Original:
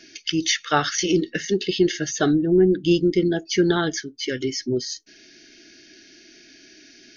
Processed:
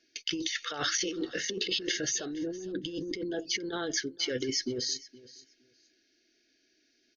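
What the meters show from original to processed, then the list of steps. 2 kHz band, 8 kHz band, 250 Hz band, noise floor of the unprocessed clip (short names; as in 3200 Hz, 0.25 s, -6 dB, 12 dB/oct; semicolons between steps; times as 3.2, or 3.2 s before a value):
-8.0 dB, n/a, -15.0 dB, -51 dBFS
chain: gate -41 dBFS, range -20 dB; thirty-one-band EQ 160 Hz -11 dB, 500 Hz +9 dB, 4000 Hz +3 dB; negative-ratio compressor -26 dBFS, ratio -1; feedback echo 0.467 s, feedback 18%, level -20 dB; gain -7.5 dB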